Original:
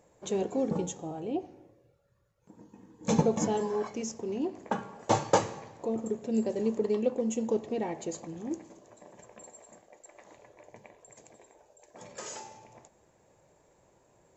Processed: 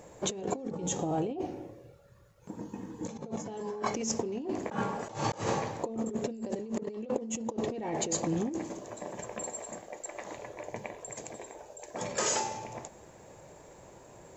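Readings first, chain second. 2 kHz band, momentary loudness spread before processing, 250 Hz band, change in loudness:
+2.5 dB, 15 LU, -2.5 dB, -3.5 dB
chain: negative-ratio compressor -40 dBFS, ratio -1; gain +5 dB

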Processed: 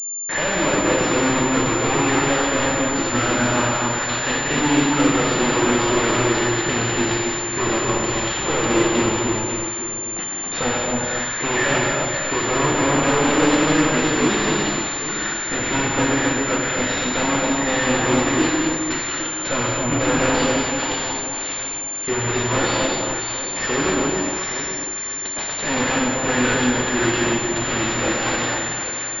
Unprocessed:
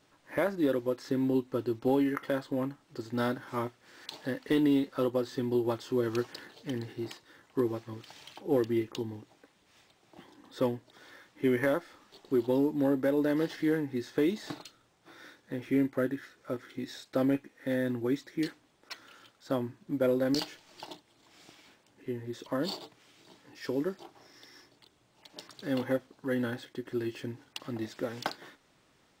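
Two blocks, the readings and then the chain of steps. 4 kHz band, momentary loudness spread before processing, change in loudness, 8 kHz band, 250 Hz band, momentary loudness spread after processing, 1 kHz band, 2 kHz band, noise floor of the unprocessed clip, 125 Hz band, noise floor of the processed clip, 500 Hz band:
+19.5 dB, 17 LU, +12.5 dB, +35.5 dB, +10.0 dB, 6 LU, +20.0 dB, +21.0 dB, -67 dBFS, +13.5 dB, -28 dBFS, +10.0 dB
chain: tracing distortion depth 0.022 ms; gate -57 dBFS, range -27 dB; tilt shelf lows -7 dB; notch 2500 Hz, Q 17; sample leveller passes 5; in parallel at -4.5 dB: sine folder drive 19 dB, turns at -11 dBFS; on the sum: flange 0.31 Hz, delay 7.9 ms, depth 7.4 ms, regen -62%; on a send: echo with dull and thin repeats by turns 0.272 s, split 1100 Hz, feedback 58%, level -2 dB; on the sum: non-linear reverb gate 0.3 s flat, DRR -1.5 dB; pulse-width modulation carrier 7200 Hz; gain -2 dB

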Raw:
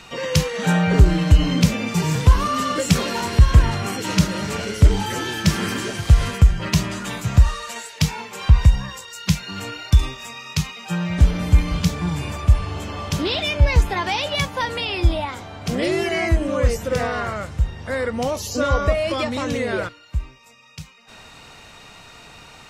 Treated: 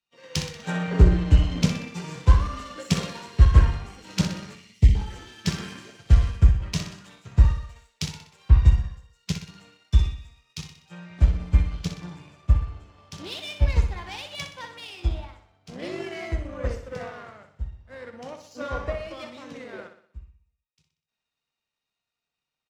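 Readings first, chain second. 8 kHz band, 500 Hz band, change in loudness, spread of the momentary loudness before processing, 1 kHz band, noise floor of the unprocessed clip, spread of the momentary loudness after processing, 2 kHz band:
-10.0 dB, -11.5 dB, -4.0 dB, 11 LU, -12.0 dB, -44 dBFS, 21 LU, -11.5 dB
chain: LPF 6700 Hz 12 dB/oct; spectral gain 4.55–4.95, 300–1800 Hz -29 dB; power-law curve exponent 1.4; on a send: feedback echo 62 ms, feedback 58%, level -8 dB; on the sum: three-band expander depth 70%; gain -7 dB

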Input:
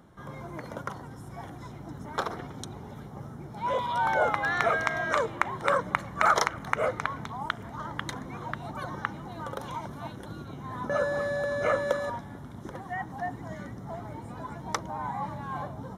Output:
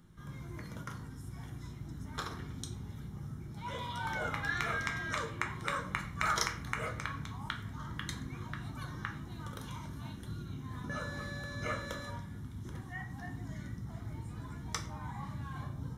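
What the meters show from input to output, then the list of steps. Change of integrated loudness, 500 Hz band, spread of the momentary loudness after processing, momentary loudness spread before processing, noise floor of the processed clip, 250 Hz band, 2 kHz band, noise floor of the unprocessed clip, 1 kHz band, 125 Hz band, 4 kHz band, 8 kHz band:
-8.5 dB, -16.0 dB, 11 LU, 17 LU, -47 dBFS, -4.5 dB, -7.0 dB, -44 dBFS, -11.0 dB, 0.0 dB, -2.5 dB, -1.5 dB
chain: passive tone stack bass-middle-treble 6-0-2; shoebox room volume 58 m³, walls mixed, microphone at 0.51 m; gain +12 dB

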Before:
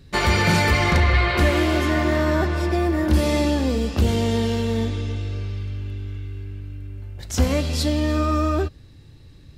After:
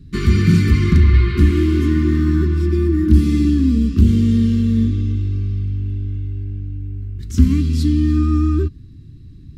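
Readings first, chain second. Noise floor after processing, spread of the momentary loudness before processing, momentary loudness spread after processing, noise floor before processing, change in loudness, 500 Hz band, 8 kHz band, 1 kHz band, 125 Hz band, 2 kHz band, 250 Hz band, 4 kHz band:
-39 dBFS, 15 LU, 12 LU, -46 dBFS, +4.5 dB, -3.5 dB, n/a, under -10 dB, +7.5 dB, -8.0 dB, +7.0 dB, -7.0 dB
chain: elliptic band-stop 420–1100 Hz, stop band 40 dB; resonant low shelf 390 Hz +13.5 dB, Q 1.5; gain -6.5 dB

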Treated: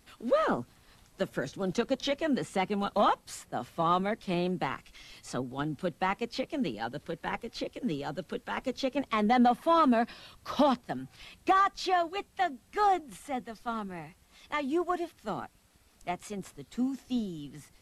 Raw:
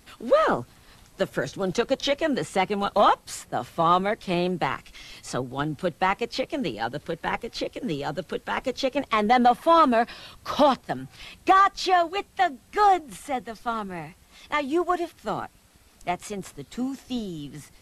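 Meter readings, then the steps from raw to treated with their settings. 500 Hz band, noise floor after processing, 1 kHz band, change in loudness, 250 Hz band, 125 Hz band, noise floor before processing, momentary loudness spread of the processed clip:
-6.5 dB, -63 dBFS, -7.0 dB, -6.0 dB, -2.5 dB, -4.5 dB, -56 dBFS, 14 LU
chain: dynamic EQ 230 Hz, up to +7 dB, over -41 dBFS, Q 2.2; gain -7 dB

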